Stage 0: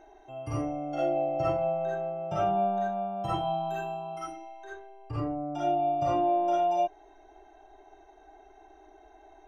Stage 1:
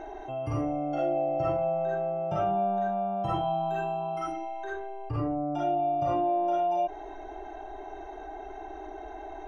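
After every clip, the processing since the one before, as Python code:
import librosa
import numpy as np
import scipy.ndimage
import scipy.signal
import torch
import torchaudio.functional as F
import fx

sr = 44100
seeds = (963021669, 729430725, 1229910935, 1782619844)

y = fx.high_shelf(x, sr, hz=4400.0, db=-12.0)
y = fx.env_flatten(y, sr, amount_pct=50)
y = y * librosa.db_to_amplitude(-1.5)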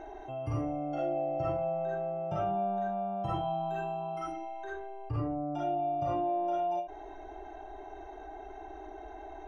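y = fx.peak_eq(x, sr, hz=77.0, db=4.5, octaves=1.6)
y = fx.end_taper(y, sr, db_per_s=150.0)
y = y * librosa.db_to_amplitude(-4.5)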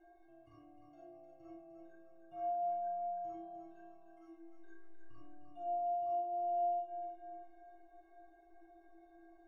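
y = fx.stiff_resonator(x, sr, f0_hz=330.0, decay_s=0.68, stiffness=0.03)
y = fx.echo_feedback(y, sr, ms=305, feedback_pct=43, wet_db=-7.0)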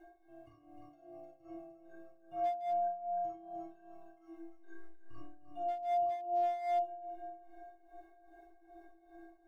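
y = np.clip(10.0 ** (33.5 / 20.0) * x, -1.0, 1.0) / 10.0 ** (33.5 / 20.0)
y = y * (1.0 - 0.79 / 2.0 + 0.79 / 2.0 * np.cos(2.0 * np.pi * 2.5 * (np.arange(len(y)) / sr)))
y = y * librosa.db_to_amplitude(7.0)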